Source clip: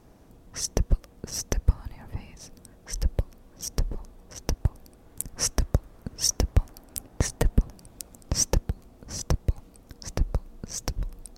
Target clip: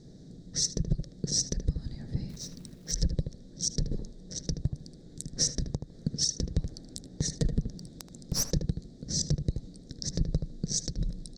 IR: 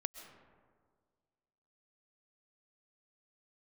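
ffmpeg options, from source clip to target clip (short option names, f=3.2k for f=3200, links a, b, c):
-filter_complex "[0:a]firequalizer=gain_entry='entry(100,0);entry(150,14);entry(210,6);entry(490,2);entry(990,-20);entry(1800,-3);entry(2700,-16);entry(3800,11);entry(8000,1);entry(13000,-28)':delay=0.05:min_phase=1,asettb=1/sr,asplit=3[a][b][c];[a]atrim=end=5.684[d];[b]atrim=start=5.68:end=6.34,asetpts=PTS-STARTPTS,afade=t=in:d=0.004:c=qsin,afade=t=out:st=0.656:d=0.004:c=qsin,acompressor=threshold=-21dB:ratio=6[e];[c]atrim=start=6.336[f];[d][e]acrossfade=d=0.004:c1=hsin:c2=qsin[g];[g][f]acrossfade=d=0.004:c1=qsin:c2=hsin,alimiter=limit=-14.5dB:level=0:latency=1:release=162,acontrast=49,asettb=1/sr,asplit=3[h][i][j];[h]atrim=end=2.294[k];[i]atrim=start=2.29:end=2.92,asetpts=PTS-STARTPTS,afade=t=in:d=0.004:c=qsin,afade=t=out:st=0.626:d=0.004:c=qsin,acrusher=bits=4:mode=log:mix=0:aa=0.000001[l];[j]atrim=start=2.916[m];[k][l]acrossfade=d=0.004:c1=hsin:c2=qsin[n];[n][m]acrossfade=d=0.004:c1=qsin:c2=hsin,asettb=1/sr,asplit=3[o][p][q];[o]atrim=end=7.774[r];[p]atrim=start=7.77:end=8.45,asetpts=PTS-STARTPTS,afade=t=in:d=0.004:c=qsin,afade=t=out:st=0.676:d=0.004:c=qsin,aeval=exprs='clip(val(0),-1,0.0501)':c=same[s];[q]atrim=start=8.446[t];[r][s]acrossfade=d=0.004:c1=hsin:c2=qsin[u];[u][t]acrossfade=d=0.004:c1=qsin:c2=hsin,asplit=2[v][w];[w]adelay=77,lowpass=f=2.1k:p=1,volume=-7.5dB,asplit=2[x][y];[y]adelay=77,lowpass=f=2.1k:p=1,volume=0.18,asplit=2[z][aa];[aa]adelay=77,lowpass=f=2.1k:p=1,volume=0.18[ab];[v][x][z][ab]amix=inputs=4:normalize=0,volume=-7dB"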